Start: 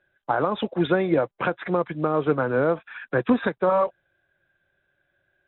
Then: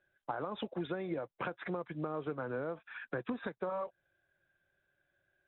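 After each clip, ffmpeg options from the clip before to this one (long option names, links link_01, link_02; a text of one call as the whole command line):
ffmpeg -i in.wav -af "acompressor=threshold=-27dB:ratio=6,volume=-7.5dB" out.wav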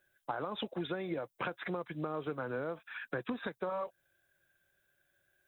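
ffmpeg -i in.wav -af "crystalizer=i=3:c=0" out.wav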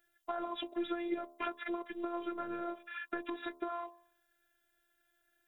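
ffmpeg -i in.wav -af "bandreject=frequency=76.88:width_type=h:width=4,bandreject=frequency=153.76:width_type=h:width=4,bandreject=frequency=230.64:width_type=h:width=4,bandreject=frequency=307.52:width_type=h:width=4,bandreject=frequency=384.4:width_type=h:width=4,bandreject=frequency=461.28:width_type=h:width=4,bandreject=frequency=538.16:width_type=h:width=4,bandreject=frequency=615.04:width_type=h:width=4,bandreject=frequency=691.92:width_type=h:width=4,bandreject=frequency=768.8:width_type=h:width=4,bandreject=frequency=845.68:width_type=h:width=4,bandreject=frequency=922.56:width_type=h:width=4,bandreject=frequency=999.44:width_type=h:width=4,bandreject=frequency=1076.32:width_type=h:width=4,bandreject=frequency=1153.2:width_type=h:width=4,bandreject=frequency=1230.08:width_type=h:width=4,afftfilt=real='hypot(re,im)*cos(PI*b)':imag='0':win_size=512:overlap=0.75,volume=3.5dB" out.wav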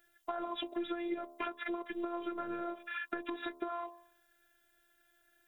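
ffmpeg -i in.wav -af "acompressor=threshold=-42dB:ratio=2.5,volume=5.5dB" out.wav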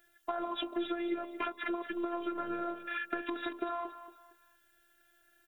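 ffmpeg -i in.wav -af "aecho=1:1:230|460|690:0.266|0.0798|0.0239,volume=2.5dB" out.wav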